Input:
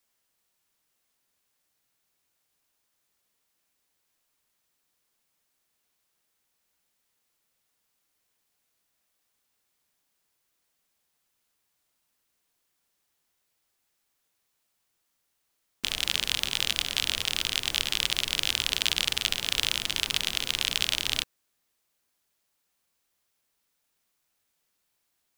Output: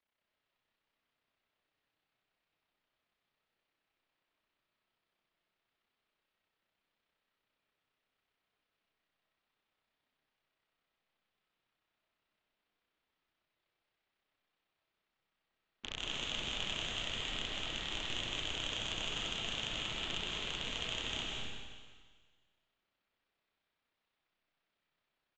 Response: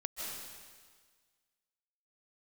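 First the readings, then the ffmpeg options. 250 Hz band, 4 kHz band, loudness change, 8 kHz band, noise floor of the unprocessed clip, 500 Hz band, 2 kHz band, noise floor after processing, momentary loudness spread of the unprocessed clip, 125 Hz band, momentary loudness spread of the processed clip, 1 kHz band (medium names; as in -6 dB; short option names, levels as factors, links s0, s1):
-2.5 dB, -11.0 dB, -11.5 dB, -15.5 dB, -77 dBFS, -2.0 dB, -10.0 dB, under -85 dBFS, 3 LU, -3.5 dB, 6 LU, -5.0 dB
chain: -filter_complex "[0:a]lowpass=f=3600:w=0.5412,lowpass=f=3600:w=1.3066,tremolo=f=32:d=0.788,aresample=16000,asoftclip=type=tanh:threshold=0.0562,aresample=44100[s0];[1:a]atrim=start_sample=2205[s1];[s0][s1]afir=irnorm=-1:irlink=0"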